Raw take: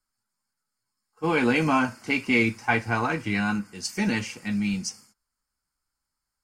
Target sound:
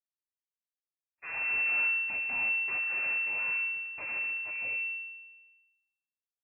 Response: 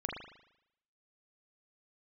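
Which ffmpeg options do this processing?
-filter_complex "[0:a]agate=range=-33dB:threshold=-49dB:ratio=3:detection=peak,aemphasis=mode=production:type=bsi,aresample=8000,aeval=exprs='abs(val(0))':channel_layout=same,aresample=44100,tremolo=f=270:d=0.667,asoftclip=type=tanh:threshold=-23dB,aecho=1:1:148|296|444|592|740:0.0841|0.0505|0.0303|0.0182|0.0109,asplit=2[link_01][link_02];[1:a]atrim=start_sample=2205,lowpass=frequency=1600:width=0.5412,lowpass=frequency=1600:width=1.3066,adelay=70[link_03];[link_02][link_03]afir=irnorm=-1:irlink=0,volume=-6dB[link_04];[link_01][link_04]amix=inputs=2:normalize=0,lowpass=frequency=2300:width_type=q:width=0.5098,lowpass=frequency=2300:width_type=q:width=0.6013,lowpass=frequency=2300:width_type=q:width=0.9,lowpass=frequency=2300:width_type=q:width=2.563,afreqshift=-2700,volume=-7dB"

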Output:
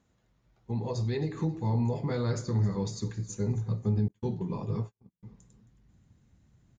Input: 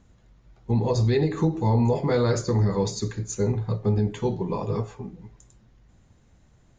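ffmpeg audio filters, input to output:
ffmpeg -i in.wav -filter_complex "[0:a]highpass=frequency=190:poles=1,asplit=2[link_01][link_02];[link_02]aecho=0:1:268|536|804:0.119|0.0416|0.0146[link_03];[link_01][link_03]amix=inputs=2:normalize=0,asettb=1/sr,asplit=3[link_04][link_05][link_06];[link_04]atrim=end=4.084[link_07];[link_05]atrim=start=4.08:end=5.23,asetpts=PTS-STARTPTS,afade=type=in:duration=0.004:curve=qsin,afade=type=out:start_time=1.146:duration=0.004:curve=qsin,agate=range=-46dB:threshold=-33dB:ratio=16:detection=peak[link_08];[link_06]atrim=start=5.226[link_09];[link_07][link_08]acrossfade=duration=0.004:curve1=hsin:curve2=qsin[link_10];[link_10][link_09]acrossfade=duration=0.004:curve1=qsin:curve2=hsin,asubboost=boost=4.5:cutoff=240,volume=-8.5dB" out.wav

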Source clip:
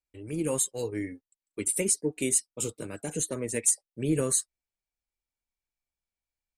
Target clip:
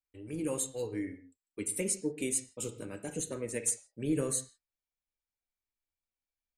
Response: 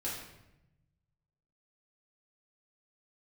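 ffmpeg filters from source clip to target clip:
-filter_complex "[0:a]asplit=2[link_01][link_02];[1:a]atrim=start_sample=2205,afade=type=out:start_time=0.22:duration=0.01,atrim=end_sample=10143,lowpass=4900[link_03];[link_02][link_03]afir=irnorm=-1:irlink=0,volume=-8dB[link_04];[link_01][link_04]amix=inputs=2:normalize=0,volume=-7dB"

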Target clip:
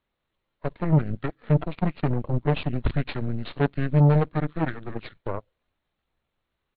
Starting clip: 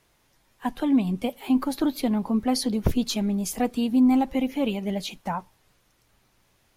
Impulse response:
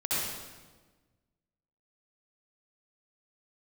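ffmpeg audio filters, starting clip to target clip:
-af "aeval=exprs='0.335*(cos(1*acos(clip(val(0)/0.335,-1,1)))-cos(1*PI/2))+0.0596*(cos(6*acos(clip(val(0)/0.335,-1,1)))-cos(6*PI/2))+0.0376*(cos(7*acos(clip(val(0)/0.335,-1,1)))-cos(7*PI/2))+0.0841*(cos(8*acos(clip(val(0)/0.335,-1,1)))-cos(8*PI/2))':channel_layout=same,aresample=16000,aresample=44100,asetrate=25476,aresample=44100,atempo=1.73107"

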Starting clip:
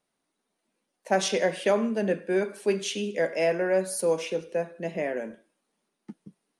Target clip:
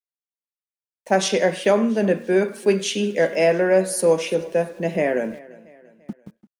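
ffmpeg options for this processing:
ffmpeg -i in.wav -af "lowshelf=frequency=270:gain=3.5,agate=range=-7dB:threshold=-44dB:ratio=16:detection=peak,dynaudnorm=framelen=290:gausssize=5:maxgain=15dB,aeval=exprs='val(0)*gte(abs(val(0)),0.00668)':channel_layout=same,aecho=1:1:341|682|1023:0.0891|0.041|0.0189,volume=-4.5dB" out.wav

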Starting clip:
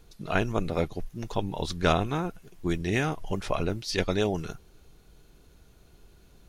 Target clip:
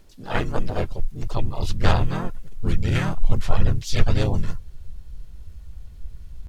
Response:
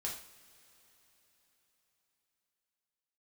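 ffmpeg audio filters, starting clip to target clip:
-filter_complex "[0:a]asubboost=boost=11:cutoff=91,asplit=3[link_01][link_02][link_03];[link_02]asetrate=33038,aresample=44100,atempo=1.33484,volume=-3dB[link_04];[link_03]asetrate=55563,aresample=44100,atempo=0.793701,volume=-2dB[link_05];[link_01][link_04][link_05]amix=inputs=3:normalize=0,volume=-2dB"

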